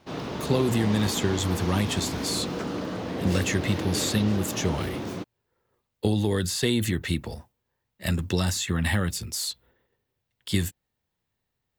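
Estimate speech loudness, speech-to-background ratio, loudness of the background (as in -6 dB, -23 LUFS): -27.0 LUFS, 5.0 dB, -32.0 LUFS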